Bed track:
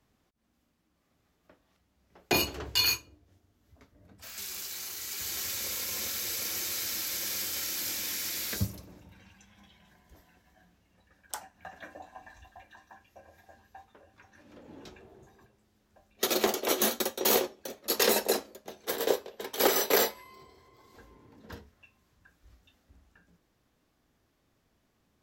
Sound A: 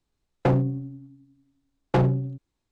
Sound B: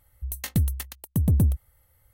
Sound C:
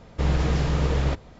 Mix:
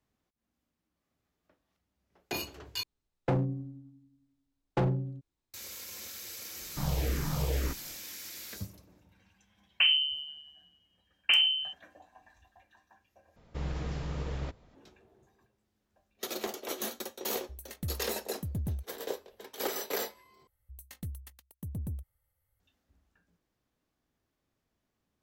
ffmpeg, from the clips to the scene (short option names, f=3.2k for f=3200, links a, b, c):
-filter_complex "[1:a]asplit=2[a][b];[3:a]asplit=2[c][d];[2:a]asplit=2[e][f];[0:a]volume=-9.5dB[g];[c]asplit=2[h][i];[i]afreqshift=-2[j];[h][j]amix=inputs=2:normalize=1[k];[b]lowpass=f=2.7k:t=q:w=0.5098,lowpass=f=2.7k:t=q:w=0.6013,lowpass=f=2.7k:t=q:w=0.9,lowpass=f=2.7k:t=q:w=2.563,afreqshift=-3200[l];[g]asplit=4[m][n][o][p];[m]atrim=end=2.834[q];[a]atrim=end=2.71,asetpts=PTS-STARTPTS,volume=-7.5dB[r];[n]atrim=start=5.536:end=13.364[s];[d]atrim=end=1.39,asetpts=PTS-STARTPTS,volume=-13dB[t];[o]atrim=start=14.746:end=20.474[u];[f]atrim=end=2.13,asetpts=PTS-STARTPTS,volume=-17dB[v];[p]atrim=start=22.596[w];[k]atrim=end=1.39,asetpts=PTS-STARTPTS,volume=-6dB,afade=t=in:d=0.004:c=hsin,afade=t=out:st=1.386:d=0.004:c=hsin,adelay=290178S[x];[l]atrim=end=2.71,asetpts=PTS-STARTPTS,volume=-4dB,afade=t=in:d=0.004:c=hsin,afade=t=out:st=2.706:d=0.004:c=hsin,adelay=9350[y];[e]atrim=end=2.13,asetpts=PTS-STARTPTS,volume=-14dB,afade=t=in:d=0.004:c=hsin,afade=t=out:st=2.126:d=0.004:c=hsin,adelay=17270[z];[q][r]acrossfade=d=0.004:c1=hsin:c2=hsin[aa];[aa][s]acrossfade=d=0.004:c1=hsin:c2=hsin[ab];[ab][t]acrossfade=d=0.004:c1=hsin:c2=hsin[ac];[ac][u]acrossfade=d=0.004:c1=hsin:c2=hsin[ad];[ad][v]acrossfade=d=0.004:c1=hsin:c2=hsin[ae];[ae][w]acrossfade=d=0.004:c1=hsin:c2=hsin[af];[af][x][y][z]amix=inputs=4:normalize=0"